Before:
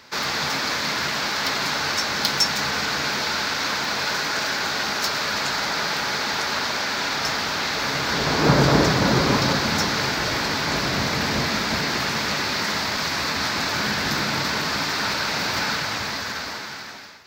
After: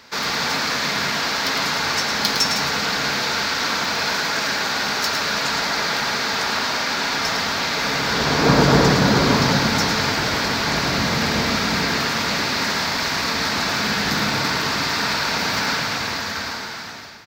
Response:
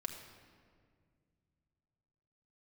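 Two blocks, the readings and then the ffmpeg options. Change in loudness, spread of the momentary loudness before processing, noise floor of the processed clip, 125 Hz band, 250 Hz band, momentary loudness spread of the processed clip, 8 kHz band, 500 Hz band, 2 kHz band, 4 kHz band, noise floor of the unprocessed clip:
+2.5 dB, 5 LU, -28 dBFS, +2.5 dB, +3.5 dB, 5 LU, +2.5 dB, +2.5 dB, +2.5 dB, +2.5 dB, -32 dBFS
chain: -filter_complex "[0:a]aecho=1:1:108:0.501,asplit=2[s0][s1];[1:a]atrim=start_sample=2205[s2];[s1][s2]afir=irnorm=-1:irlink=0,volume=1[s3];[s0][s3]amix=inputs=2:normalize=0,volume=0.668"

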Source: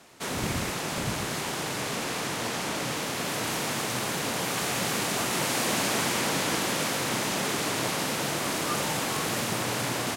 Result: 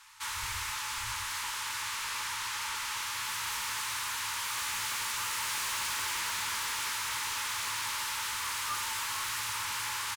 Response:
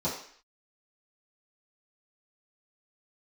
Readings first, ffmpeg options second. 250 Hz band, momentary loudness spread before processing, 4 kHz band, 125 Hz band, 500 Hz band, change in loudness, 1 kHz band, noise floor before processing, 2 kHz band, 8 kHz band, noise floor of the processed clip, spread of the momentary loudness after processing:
-27.5 dB, 5 LU, -3.5 dB, -17.5 dB, -25.0 dB, -4.5 dB, -5.0 dB, -32 dBFS, -3.5 dB, -3.5 dB, -37 dBFS, 3 LU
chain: -filter_complex "[0:a]equalizer=f=75:t=o:w=1.3:g=-11,afftfilt=real='re*(1-between(b*sr/4096,110,830))':imag='im*(1-between(b*sr/4096,110,830))':win_size=4096:overlap=0.75,acrossover=split=240[s0][s1];[s1]asoftclip=type=tanh:threshold=0.0282[s2];[s0][s2]amix=inputs=2:normalize=0,asplit=2[s3][s4];[s4]adelay=15,volume=0.299[s5];[s3][s5]amix=inputs=2:normalize=0"

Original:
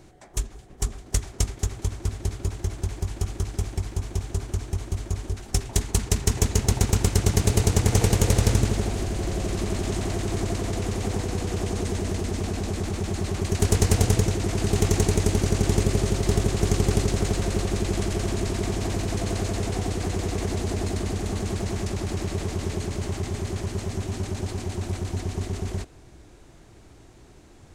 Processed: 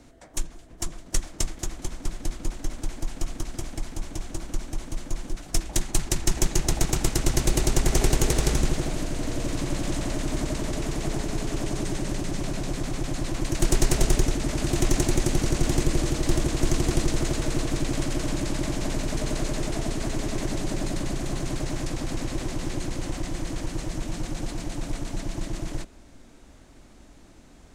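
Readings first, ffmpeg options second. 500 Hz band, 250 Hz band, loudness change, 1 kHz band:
-3.0 dB, -0.5 dB, -2.5 dB, -1.5 dB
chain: -af "afreqshift=-66"

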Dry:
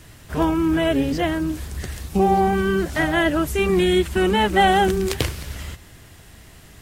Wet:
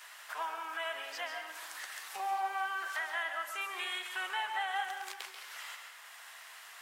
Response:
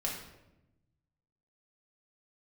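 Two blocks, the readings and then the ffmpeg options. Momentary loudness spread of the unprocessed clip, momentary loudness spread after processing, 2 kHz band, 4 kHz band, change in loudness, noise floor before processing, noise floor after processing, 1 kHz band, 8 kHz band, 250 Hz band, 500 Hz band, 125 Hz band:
15 LU, 14 LU, -10.5 dB, -12.5 dB, -17.5 dB, -46 dBFS, -52 dBFS, -14.5 dB, -12.5 dB, under -40 dB, -28.0 dB, under -40 dB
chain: -filter_complex "[0:a]highpass=f=950:w=0.5412,highpass=f=950:w=1.3066,agate=range=0.0224:threshold=0.00631:ratio=3:detection=peak,highshelf=f=2300:g=-9,acompressor=mode=upward:threshold=0.0316:ratio=2.5,alimiter=limit=0.0944:level=0:latency=1:release=460,asplit=2[s0][s1];[1:a]atrim=start_sample=2205,adelay=137[s2];[s1][s2]afir=irnorm=-1:irlink=0,volume=0.398[s3];[s0][s3]amix=inputs=2:normalize=0,volume=0.501"

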